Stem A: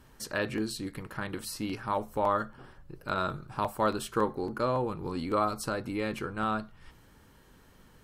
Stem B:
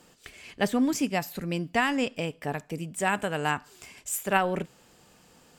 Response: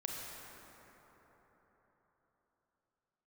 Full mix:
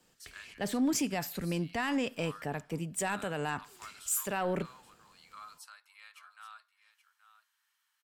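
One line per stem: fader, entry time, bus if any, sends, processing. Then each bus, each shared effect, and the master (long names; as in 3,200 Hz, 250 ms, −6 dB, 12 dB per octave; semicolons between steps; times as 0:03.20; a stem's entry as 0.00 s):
−12.0 dB, 0.00 s, no send, echo send −13.5 dB, Bessel high-pass filter 1,700 Hz, order 6
−0.5 dB, 0.00 s, no send, no echo send, brickwall limiter −21 dBFS, peak gain reduction 11.5 dB; multiband upward and downward expander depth 40%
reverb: not used
echo: single-tap delay 827 ms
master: soft clipping −21 dBFS, distortion −20 dB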